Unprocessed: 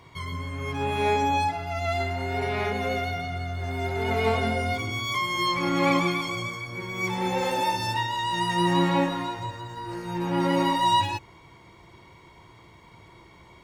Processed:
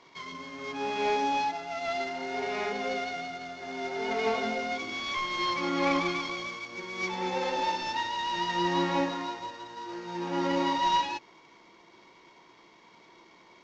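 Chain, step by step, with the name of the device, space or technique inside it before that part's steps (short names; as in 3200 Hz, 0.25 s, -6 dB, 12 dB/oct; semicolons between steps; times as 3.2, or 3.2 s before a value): early wireless headset (HPF 210 Hz 24 dB/oct; CVSD 32 kbps); gain -3.5 dB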